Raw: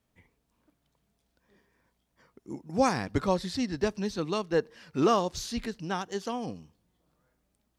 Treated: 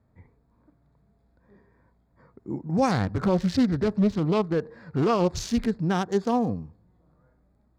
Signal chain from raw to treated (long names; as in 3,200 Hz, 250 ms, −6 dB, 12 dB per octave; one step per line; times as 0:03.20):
adaptive Wiener filter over 15 samples
parametric band 95 Hz +6 dB 1.3 octaves
brickwall limiter −23.5 dBFS, peak gain reduction 11 dB
harmonic and percussive parts rebalanced harmonic +7 dB
0:02.91–0:05.49: highs frequency-modulated by the lows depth 0.32 ms
level +4 dB